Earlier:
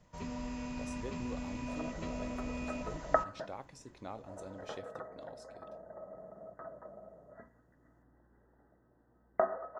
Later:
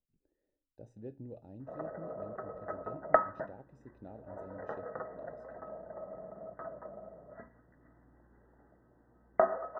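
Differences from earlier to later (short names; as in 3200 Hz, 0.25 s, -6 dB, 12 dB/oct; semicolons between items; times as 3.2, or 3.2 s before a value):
speech: add running mean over 40 samples; first sound: muted; second sound +3.5 dB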